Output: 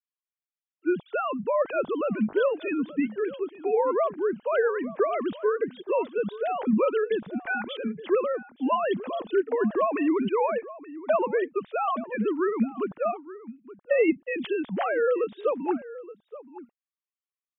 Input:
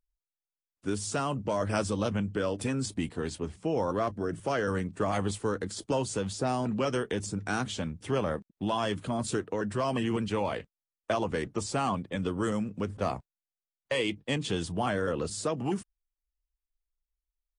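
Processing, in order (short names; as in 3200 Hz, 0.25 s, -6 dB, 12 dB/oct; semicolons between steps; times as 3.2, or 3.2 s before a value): sine-wave speech; outdoor echo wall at 150 m, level -16 dB; gain +4.5 dB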